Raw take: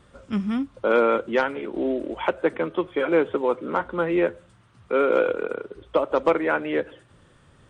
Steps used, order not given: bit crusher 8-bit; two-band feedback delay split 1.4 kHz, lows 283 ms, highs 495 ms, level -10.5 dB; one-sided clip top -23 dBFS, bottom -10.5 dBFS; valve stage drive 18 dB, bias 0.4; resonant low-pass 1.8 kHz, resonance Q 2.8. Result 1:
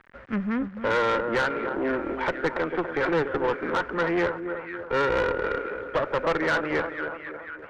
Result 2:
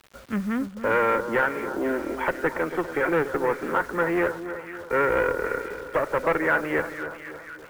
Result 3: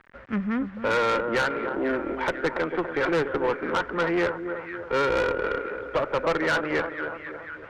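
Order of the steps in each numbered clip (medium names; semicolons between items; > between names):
bit crusher > two-band feedback delay > one-sided clip > resonant low-pass > valve stage; valve stage > one-sided clip > resonant low-pass > bit crusher > two-band feedback delay; two-band feedback delay > bit crusher > resonant low-pass > valve stage > one-sided clip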